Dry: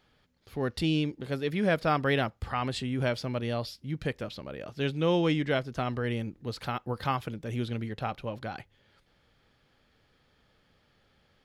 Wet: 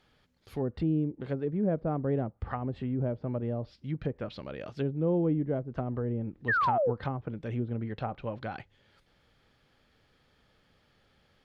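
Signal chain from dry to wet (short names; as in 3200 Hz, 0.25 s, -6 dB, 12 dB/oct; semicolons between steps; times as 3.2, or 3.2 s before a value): treble ducked by the level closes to 520 Hz, closed at -26.5 dBFS; painted sound fall, 6.48–6.91, 430–1900 Hz -26 dBFS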